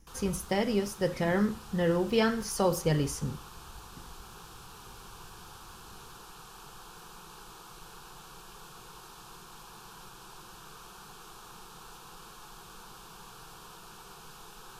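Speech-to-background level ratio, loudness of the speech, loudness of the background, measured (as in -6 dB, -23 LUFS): 19.0 dB, -29.5 LUFS, -48.5 LUFS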